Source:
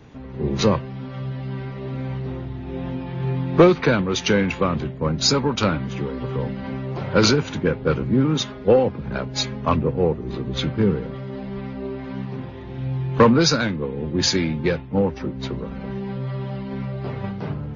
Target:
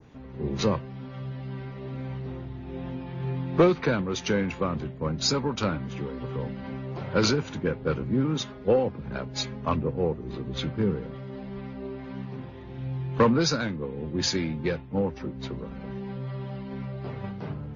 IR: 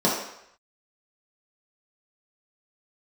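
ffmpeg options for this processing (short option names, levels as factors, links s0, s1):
-af "adynamicequalizer=threshold=0.0141:dfrequency=3000:dqfactor=0.91:tfrequency=3000:tqfactor=0.91:attack=5:release=100:ratio=0.375:range=2:mode=cutabove:tftype=bell,volume=0.473"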